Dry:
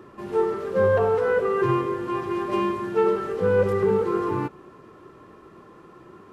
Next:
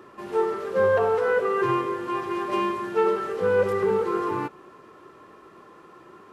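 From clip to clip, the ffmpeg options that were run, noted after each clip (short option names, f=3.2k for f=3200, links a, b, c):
-af "lowshelf=f=280:g=-11.5,volume=2dB"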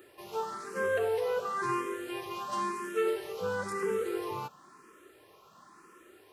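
-filter_complex "[0:a]crystalizer=i=4.5:c=0,asplit=2[a][b];[b]afreqshift=0.98[c];[a][c]amix=inputs=2:normalize=1,volume=-7dB"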